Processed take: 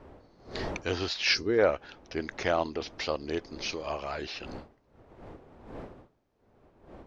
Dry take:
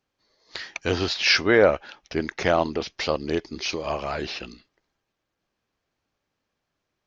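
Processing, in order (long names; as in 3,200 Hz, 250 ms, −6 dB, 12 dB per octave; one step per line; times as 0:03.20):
wind on the microphone 480 Hz −40 dBFS
gain on a spectral selection 0:01.34–0:01.59, 480–3,900 Hz −13 dB
parametric band 170 Hz −4 dB 1.2 octaves
level −6 dB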